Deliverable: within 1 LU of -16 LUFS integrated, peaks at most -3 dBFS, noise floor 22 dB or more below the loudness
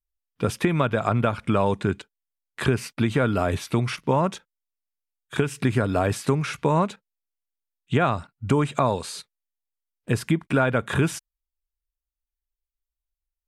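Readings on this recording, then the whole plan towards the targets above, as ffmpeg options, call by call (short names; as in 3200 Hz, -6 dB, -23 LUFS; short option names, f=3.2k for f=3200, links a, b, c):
loudness -24.5 LUFS; peak -7.0 dBFS; loudness target -16.0 LUFS
-> -af "volume=8.5dB,alimiter=limit=-3dB:level=0:latency=1"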